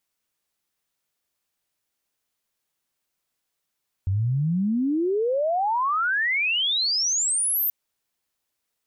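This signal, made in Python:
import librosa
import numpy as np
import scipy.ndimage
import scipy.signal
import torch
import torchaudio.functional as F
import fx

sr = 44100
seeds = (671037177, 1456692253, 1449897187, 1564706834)

y = fx.chirp(sr, length_s=3.63, from_hz=91.0, to_hz=14000.0, law='logarithmic', from_db=-20.0, to_db=-20.5)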